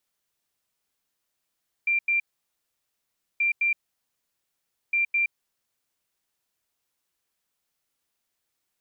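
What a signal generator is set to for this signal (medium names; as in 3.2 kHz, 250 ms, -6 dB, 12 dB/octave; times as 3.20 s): beep pattern sine 2.37 kHz, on 0.12 s, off 0.09 s, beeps 2, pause 1.20 s, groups 3, -20 dBFS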